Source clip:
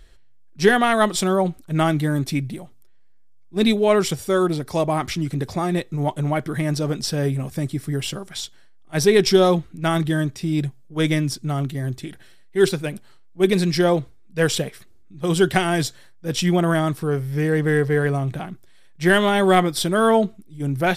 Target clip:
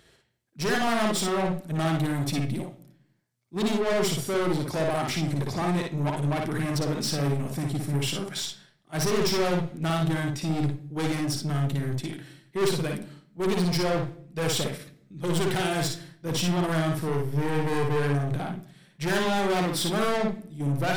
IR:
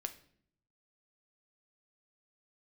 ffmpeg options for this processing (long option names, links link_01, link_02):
-filter_complex "[0:a]highpass=frequency=89:width=0.5412,highpass=frequency=89:width=1.3066,aeval=exprs='(tanh(17.8*val(0)+0.25)-tanh(0.25))/17.8':channel_layout=same,asplit=2[link_01][link_02];[1:a]atrim=start_sample=2205,highshelf=frequency=9600:gain=-7.5,adelay=56[link_03];[link_02][link_03]afir=irnorm=-1:irlink=0,volume=0dB[link_04];[link_01][link_04]amix=inputs=2:normalize=0"